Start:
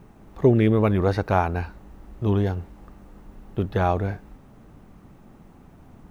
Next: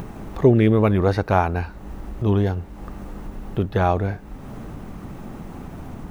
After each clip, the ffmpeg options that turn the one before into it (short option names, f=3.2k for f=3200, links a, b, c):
-af "acompressor=mode=upward:threshold=-25dB:ratio=2.5,volume=2.5dB"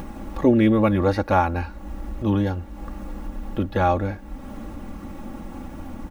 -af "aecho=1:1:3.6:0.78,volume=-2dB"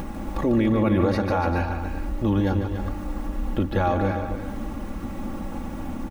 -af "alimiter=limit=-16.5dB:level=0:latency=1:release=96,aecho=1:1:147|287|395:0.376|0.335|0.224,volume=2.5dB"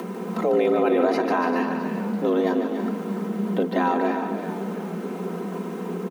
-filter_complex "[0:a]asplit=8[a][b][c][d][e][f][g][h];[b]adelay=333,afreqshift=-48,volume=-13.5dB[i];[c]adelay=666,afreqshift=-96,volume=-17.7dB[j];[d]adelay=999,afreqshift=-144,volume=-21.8dB[k];[e]adelay=1332,afreqshift=-192,volume=-26dB[l];[f]adelay=1665,afreqshift=-240,volume=-30.1dB[m];[g]adelay=1998,afreqshift=-288,volume=-34.3dB[n];[h]adelay=2331,afreqshift=-336,volume=-38.4dB[o];[a][i][j][k][l][m][n][o]amix=inputs=8:normalize=0,afreqshift=170"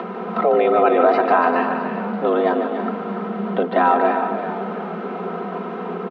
-af "highpass=170,equalizer=f=180:t=q:w=4:g=-3,equalizer=f=300:t=q:w=4:g=-8,equalizer=f=710:t=q:w=4:g=7,equalizer=f=1.3k:t=q:w=4:g=8,lowpass=f=3.6k:w=0.5412,lowpass=f=3.6k:w=1.3066,volume=4dB"